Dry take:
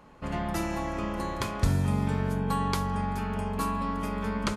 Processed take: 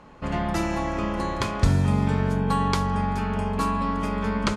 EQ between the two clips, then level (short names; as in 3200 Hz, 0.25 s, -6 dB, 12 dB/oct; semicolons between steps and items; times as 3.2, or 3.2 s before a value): LPF 7800 Hz 12 dB/oct; +5.0 dB